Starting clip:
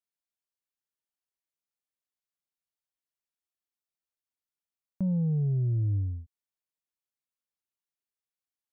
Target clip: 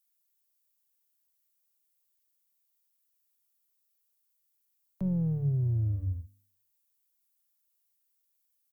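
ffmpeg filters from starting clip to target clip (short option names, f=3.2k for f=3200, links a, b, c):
-filter_complex "[0:a]asplit=2[a][b];[b]asetrate=33038,aresample=44100,atempo=1.33484,volume=-15dB[c];[a][c]amix=inputs=2:normalize=0,aemphasis=mode=production:type=75fm,acrossover=split=150|200|360[d][e][f][g];[f]aeval=exprs='max(val(0),0)':c=same[h];[d][e][h][g]amix=inputs=4:normalize=0,bandreject=f=49.84:t=h:w=4,bandreject=f=99.68:t=h:w=4,bandreject=f=149.52:t=h:w=4,bandreject=f=199.36:t=h:w=4,bandreject=f=249.2:t=h:w=4,bandreject=f=299.04:t=h:w=4"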